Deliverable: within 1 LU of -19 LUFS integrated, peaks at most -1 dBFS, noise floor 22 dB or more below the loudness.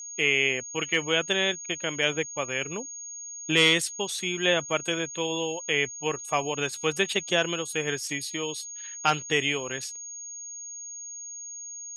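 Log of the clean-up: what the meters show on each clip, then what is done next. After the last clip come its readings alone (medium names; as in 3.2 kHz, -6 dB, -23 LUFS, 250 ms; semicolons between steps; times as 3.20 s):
steady tone 6.6 kHz; tone level -37 dBFS; loudness -27.0 LUFS; peak level -7.5 dBFS; loudness target -19.0 LUFS
-> band-stop 6.6 kHz, Q 30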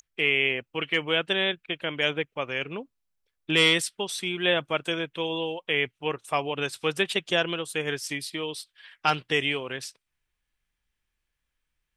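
steady tone not found; loudness -26.5 LUFS; peak level -7.5 dBFS; loudness target -19.0 LUFS
-> trim +7.5 dB; peak limiter -1 dBFS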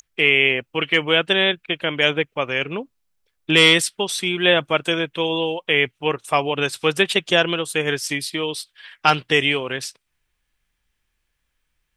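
loudness -19.0 LUFS; peak level -1.0 dBFS; noise floor -74 dBFS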